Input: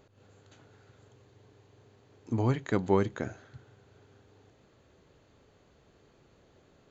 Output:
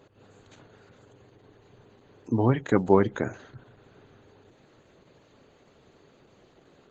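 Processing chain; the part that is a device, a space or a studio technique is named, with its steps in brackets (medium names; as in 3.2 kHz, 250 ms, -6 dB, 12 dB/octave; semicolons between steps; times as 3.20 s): noise-suppressed video call (high-pass 120 Hz 12 dB/octave; spectral gate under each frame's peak -30 dB strong; trim +6.5 dB; Opus 12 kbps 48 kHz)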